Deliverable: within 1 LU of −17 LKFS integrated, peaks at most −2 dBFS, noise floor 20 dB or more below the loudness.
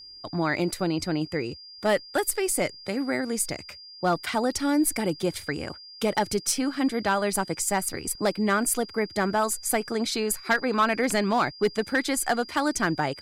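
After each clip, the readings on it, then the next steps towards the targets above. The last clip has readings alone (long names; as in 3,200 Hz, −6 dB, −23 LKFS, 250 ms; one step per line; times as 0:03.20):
share of clipped samples 0.5%; peaks flattened at −15.5 dBFS; interfering tone 4,800 Hz; level of the tone −43 dBFS; integrated loudness −26.0 LKFS; sample peak −15.5 dBFS; target loudness −17.0 LKFS
→ clipped peaks rebuilt −15.5 dBFS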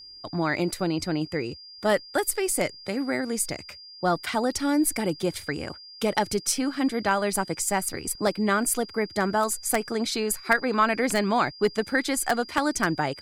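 share of clipped samples 0.0%; interfering tone 4,800 Hz; level of the tone −43 dBFS
→ notch filter 4,800 Hz, Q 30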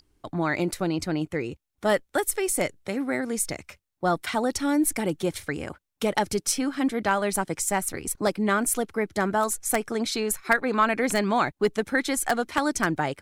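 interfering tone none found; integrated loudness −26.0 LKFS; sample peak −6.5 dBFS; target loudness −17.0 LKFS
→ level +9 dB
brickwall limiter −2 dBFS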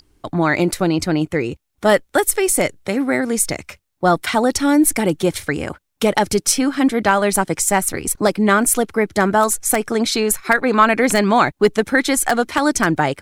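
integrated loudness −17.5 LKFS; sample peak −2.0 dBFS; background noise floor −68 dBFS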